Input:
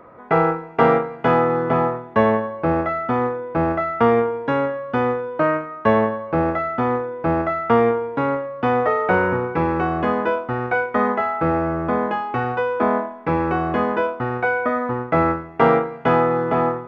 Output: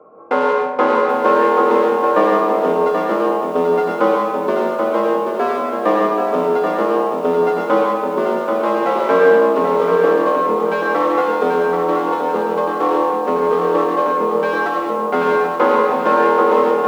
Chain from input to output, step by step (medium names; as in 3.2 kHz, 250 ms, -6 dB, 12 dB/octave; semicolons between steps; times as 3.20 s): local Wiener filter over 25 samples; plate-style reverb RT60 1.2 s, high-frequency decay 0.5×, pre-delay 90 ms, DRR 0 dB; frequency shift +93 Hz; high-pass 82 Hz 6 dB/octave; small resonant body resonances 470/1100 Hz, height 12 dB, ringing for 55 ms; bit-crushed delay 782 ms, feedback 35%, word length 7-bit, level -5.5 dB; trim -1.5 dB